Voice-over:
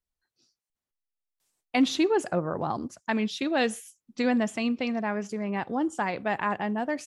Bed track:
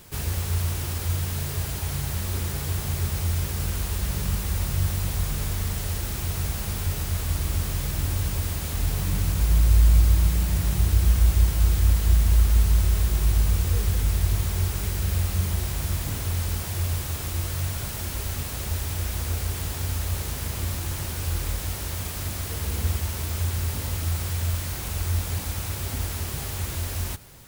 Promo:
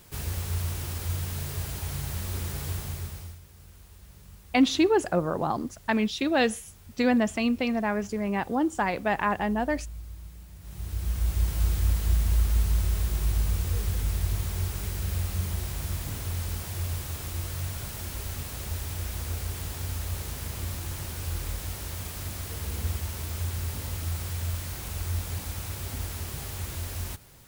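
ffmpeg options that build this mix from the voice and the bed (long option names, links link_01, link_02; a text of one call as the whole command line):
ffmpeg -i stem1.wav -i stem2.wav -filter_complex "[0:a]adelay=2800,volume=2dB[link_01];[1:a]volume=14dB,afade=type=out:start_time=2.69:duration=0.7:silence=0.112202,afade=type=in:start_time=10.6:duration=0.99:silence=0.11885[link_02];[link_01][link_02]amix=inputs=2:normalize=0" out.wav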